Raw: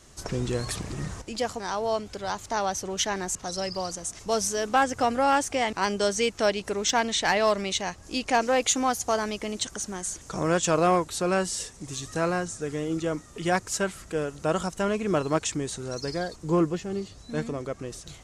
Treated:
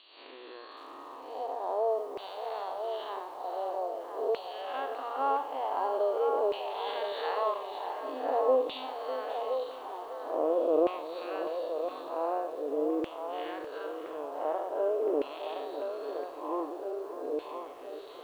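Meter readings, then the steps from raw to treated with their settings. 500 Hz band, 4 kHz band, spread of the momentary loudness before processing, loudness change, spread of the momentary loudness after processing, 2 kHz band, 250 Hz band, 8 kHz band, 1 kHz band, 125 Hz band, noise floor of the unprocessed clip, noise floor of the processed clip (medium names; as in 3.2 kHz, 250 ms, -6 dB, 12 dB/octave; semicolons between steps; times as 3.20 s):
-2.5 dB, -14.0 dB, 10 LU, -5.5 dB, 12 LU, -15.5 dB, -10.5 dB, under -30 dB, -5.5 dB, under -35 dB, -49 dBFS, -47 dBFS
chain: spectral blur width 187 ms; high-order bell 1.8 kHz -12.5 dB 1 oct; FFT band-pass 250–4600 Hz; bass shelf 410 Hz +2.5 dB; in parallel at +2 dB: compression 8:1, threshold -41 dBFS, peak gain reduction 20.5 dB; on the sum: transient shaper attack +4 dB, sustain -5 dB; reverse; upward compressor, threshold -36 dBFS; reverse; LFO band-pass saw down 0.46 Hz 430–2700 Hz; feedback echo behind a band-pass 1017 ms, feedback 48%, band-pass 930 Hz, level -5.5 dB; bit-crushed delay 601 ms, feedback 35%, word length 9-bit, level -12 dB; trim +2 dB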